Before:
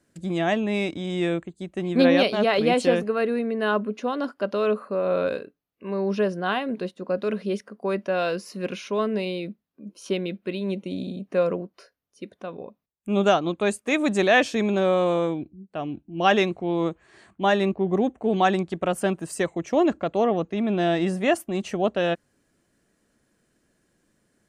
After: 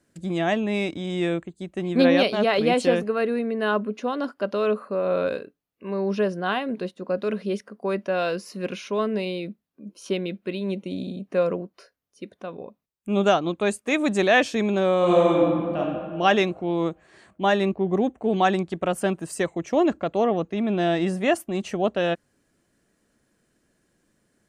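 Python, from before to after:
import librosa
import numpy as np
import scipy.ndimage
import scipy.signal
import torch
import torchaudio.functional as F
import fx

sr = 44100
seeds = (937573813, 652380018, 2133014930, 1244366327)

y = fx.reverb_throw(x, sr, start_s=14.99, length_s=0.8, rt60_s=2.0, drr_db=-5.0)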